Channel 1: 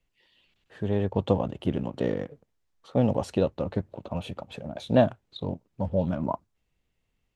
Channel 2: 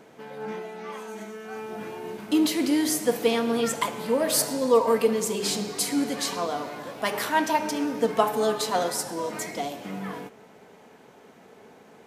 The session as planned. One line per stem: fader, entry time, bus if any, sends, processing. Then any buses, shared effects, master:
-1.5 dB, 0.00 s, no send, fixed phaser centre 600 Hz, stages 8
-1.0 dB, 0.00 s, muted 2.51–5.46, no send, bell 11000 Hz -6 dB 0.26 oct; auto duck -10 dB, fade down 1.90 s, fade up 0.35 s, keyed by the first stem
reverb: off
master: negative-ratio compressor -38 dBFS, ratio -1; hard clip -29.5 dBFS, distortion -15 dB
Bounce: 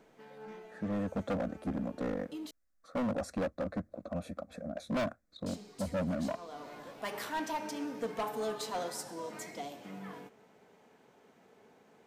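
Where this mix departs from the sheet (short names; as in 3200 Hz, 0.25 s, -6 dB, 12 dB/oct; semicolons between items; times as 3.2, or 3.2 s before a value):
stem 2 -1.0 dB -> -11.0 dB; master: missing negative-ratio compressor -38 dBFS, ratio -1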